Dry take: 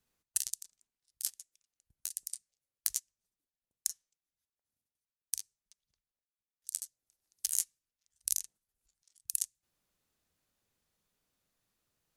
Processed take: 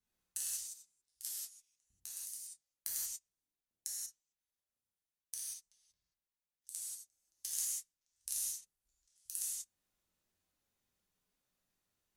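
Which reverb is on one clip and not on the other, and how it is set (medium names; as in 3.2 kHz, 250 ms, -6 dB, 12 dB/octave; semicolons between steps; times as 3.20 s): gated-style reverb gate 210 ms flat, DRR -7.5 dB; trim -11.5 dB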